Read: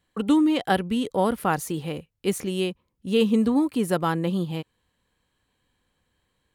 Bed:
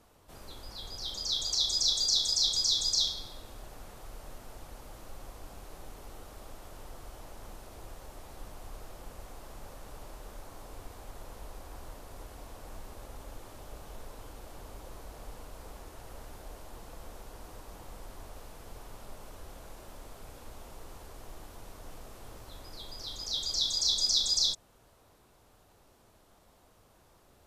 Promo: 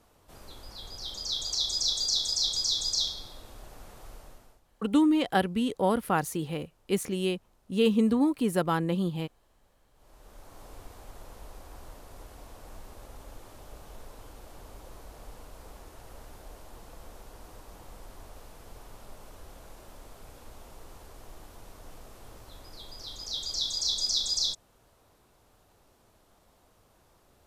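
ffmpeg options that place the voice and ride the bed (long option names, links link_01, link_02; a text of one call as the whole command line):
ffmpeg -i stem1.wav -i stem2.wav -filter_complex "[0:a]adelay=4650,volume=-3dB[link_01];[1:a]volume=18.5dB,afade=type=out:start_time=4.1:duration=0.51:silence=0.105925,afade=type=in:start_time=9.94:duration=0.72:silence=0.112202[link_02];[link_01][link_02]amix=inputs=2:normalize=0" out.wav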